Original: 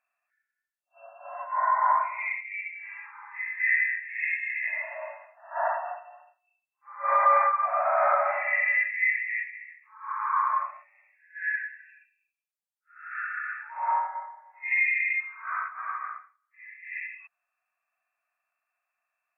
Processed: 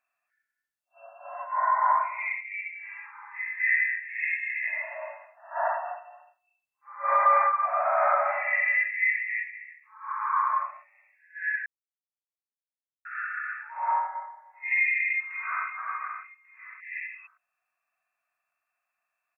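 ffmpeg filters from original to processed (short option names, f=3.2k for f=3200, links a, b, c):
-filter_complex "[0:a]asplit=3[a][b][c];[a]afade=t=out:st=7.23:d=0.02[d];[b]highpass=f=500:w=0.5412,highpass=f=500:w=1.3066,afade=t=in:st=7.23:d=0.02,afade=t=out:st=10.19:d=0.02[e];[c]afade=t=in:st=10.19:d=0.02[f];[d][e][f]amix=inputs=3:normalize=0,asplit=2[g][h];[h]afade=t=in:st=14.73:d=0.01,afade=t=out:st=15.66:d=0.01,aecho=0:1:570|1140|1710:0.237137|0.0711412|0.0213424[i];[g][i]amix=inputs=2:normalize=0,asplit=3[j][k][l];[j]atrim=end=11.66,asetpts=PTS-STARTPTS,afade=t=out:st=11.656:d=0.004:c=hsin[m];[k]atrim=start=11.66:end=13.05,asetpts=PTS-STARTPTS,volume=0[n];[l]atrim=start=13.05,asetpts=PTS-STARTPTS,afade=t=in:d=0.004:c=hsin[o];[m][n][o]concat=n=3:v=0:a=1"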